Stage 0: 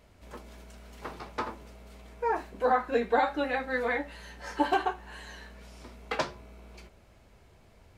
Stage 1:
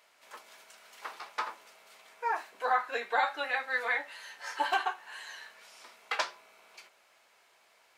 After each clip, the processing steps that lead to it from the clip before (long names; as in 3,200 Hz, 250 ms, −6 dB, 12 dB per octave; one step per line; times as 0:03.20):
high-pass filter 990 Hz 12 dB per octave
level +2.5 dB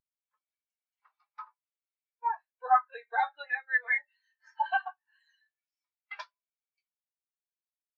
high-shelf EQ 2,000 Hz +10 dB
every bin expanded away from the loudest bin 2.5 to 1
level −2.5 dB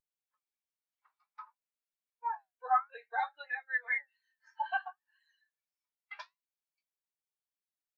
flanger 0.57 Hz, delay 1.7 ms, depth 9.2 ms, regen +69%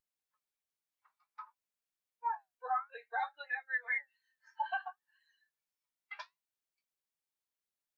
brickwall limiter −25.5 dBFS, peak gain reduction 8 dB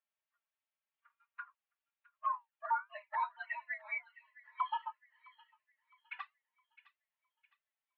flanger swept by the level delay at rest 4.2 ms, full sweep at −36.5 dBFS
single-sideband voice off tune +150 Hz 410–3,100 Hz
delay with a high-pass on its return 661 ms, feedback 37%, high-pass 2,100 Hz, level −14.5 dB
level +4.5 dB